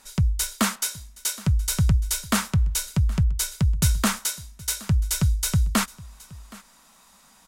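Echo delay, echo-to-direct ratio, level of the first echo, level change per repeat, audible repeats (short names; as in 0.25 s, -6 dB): 0.77 s, -21.5 dB, -21.5 dB, no steady repeat, 1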